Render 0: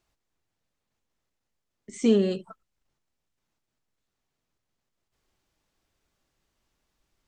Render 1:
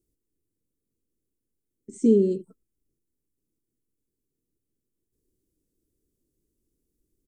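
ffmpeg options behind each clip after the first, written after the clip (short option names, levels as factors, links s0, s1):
-af "firequalizer=gain_entry='entry(180,0);entry(310,7);entry(460,1);entry(710,-27);entry(9300,3)':delay=0.05:min_phase=1"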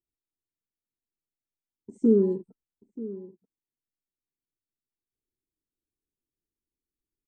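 -filter_complex "[0:a]afwtdn=0.00891,asplit=2[s0][s1];[s1]adelay=932.9,volume=0.158,highshelf=f=4000:g=-21[s2];[s0][s2]amix=inputs=2:normalize=0,volume=0.841"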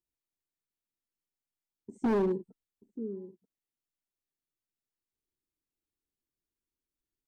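-af "asoftclip=type=hard:threshold=0.0794,volume=0.794"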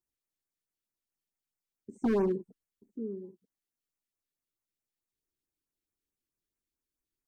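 -af "afftfilt=real='re*(1-between(b*sr/1024,710*pow(4100/710,0.5+0.5*sin(2*PI*4.6*pts/sr))/1.41,710*pow(4100/710,0.5+0.5*sin(2*PI*4.6*pts/sr))*1.41))':imag='im*(1-between(b*sr/1024,710*pow(4100/710,0.5+0.5*sin(2*PI*4.6*pts/sr))/1.41,710*pow(4100/710,0.5+0.5*sin(2*PI*4.6*pts/sr))*1.41))':win_size=1024:overlap=0.75"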